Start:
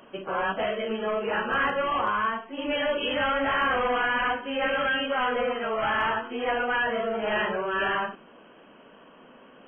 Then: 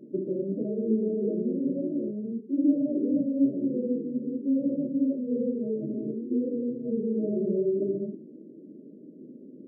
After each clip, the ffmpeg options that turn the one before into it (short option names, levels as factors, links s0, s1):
-af "lowshelf=f=440:t=q:w=3:g=9,afftfilt=real='re*between(b*sr/4096,120,640)':imag='im*between(b*sr/4096,120,640)':win_size=4096:overlap=0.75,volume=0.708"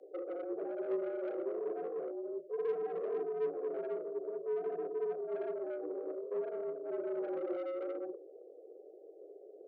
-filter_complex "[0:a]acrossover=split=150|230[s0][s1][s2];[s2]asoftclip=type=tanh:threshold=0.0224[s3];[s0][s1][s3]amix=inputs=3:normalize=0,afreqshift=160,volume=0.447"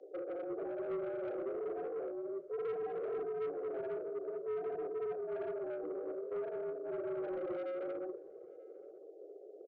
-filter_complex "[0:a]aresample=16000,asoftclip=type=tanh:threshold=0.0188,aresample=44100,asplit=2[s0][s1];[s1]adelay=932.9,volume=0.0794,highshelf=f=4000:g=-21[s2];[s0][s2]amix=inputs=2:normalize=0,volume=1.12"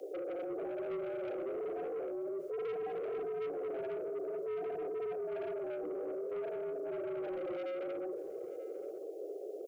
-af "alimiter=level_in=10:limit=0.0631:level=0:latency=1:release=22,volume=0.1,aexciter=amount=2.4:drive=5:freq=2200,volume=2.99"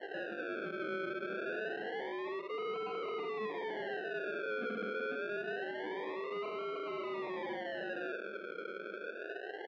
-af "acrusher=samples=36:mix=1:aa=0.000001:lfo=1:lforange=21.6:lforate=0.26,highpass=f=160:w=0.5412,highpass=f=160:w=1.3066,equalizer=f=210:t=q:w=4:g=8,equalizer=f=590:t=q:w=4:g=-3,equalizer=f=1500:t=q:w=4:g=8,lowpass=f=3200:w=0.5412,lowpass=f=3200:w=1.3066,volume=0.891"